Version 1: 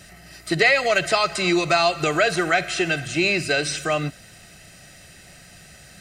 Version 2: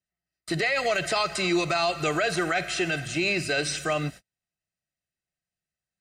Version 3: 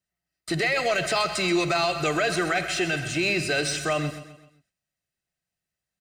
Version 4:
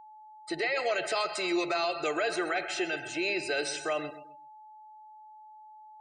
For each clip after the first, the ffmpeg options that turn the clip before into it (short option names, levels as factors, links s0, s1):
-af "agate=range=0.00708:threshold=0.0158:ratio=16:detection=peak,alimiter=limit=0.224:level=0:latency=1:release=17,volume=0.708"
-filter_complex "[0:a]asplit=2[s0][s1];[s1]asoftclip=type=tanh:threshold=0.02,volume=0.447[s2];[s0][s2]amix=inputs=2:normalize=0,aecho=1:1:129|258|387|516:0.237|0.104|0.0459|0.0202"
-af "afftdn=nr=28:nf=-39,lowshelf=f=260:t=q:w=1.5:g=-12,aeval=exprs='val(0)+0.00794*sin(2*PI*860*n/s)':c=same,volume=0.473"